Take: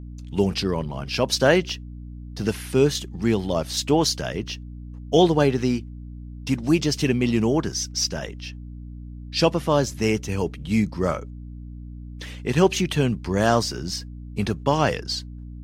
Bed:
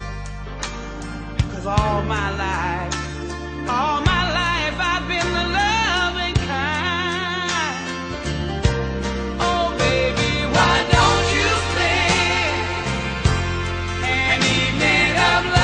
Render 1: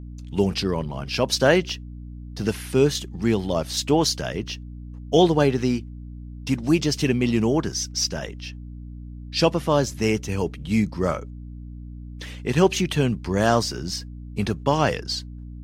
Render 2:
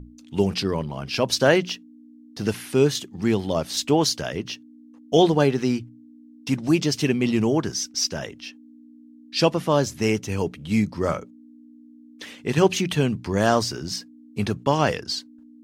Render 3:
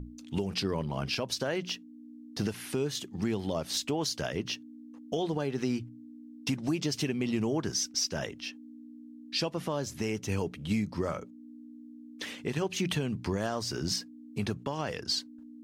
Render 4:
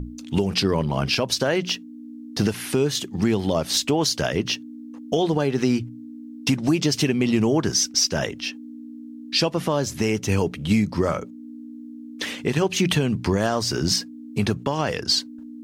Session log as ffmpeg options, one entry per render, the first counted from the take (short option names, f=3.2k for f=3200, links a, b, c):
-af anull
-af "bandreject=f=60:t=h:w=6,bandreject=f=120:t=h:w=6,bandreject=f=180:t=h:w=6"
-af "acompressor=threshold=-22dB:ratio=5,alimiter=limit=-20dB:level=0:latency=1:release=408"
-af "volume=10dB"